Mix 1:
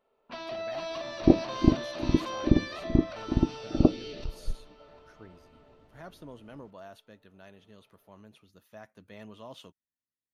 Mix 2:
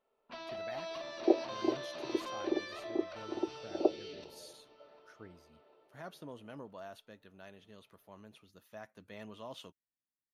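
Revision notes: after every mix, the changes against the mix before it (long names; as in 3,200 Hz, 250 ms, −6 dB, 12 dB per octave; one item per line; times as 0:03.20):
first sound −5.5 dB
second sound: add Chebyshev band-pass filter 360–920 Hz, order 3
master: add low-shelf EQ 250 Hz −4 dB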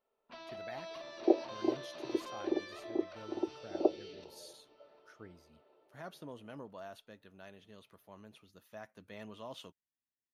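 first sound −4.0 dB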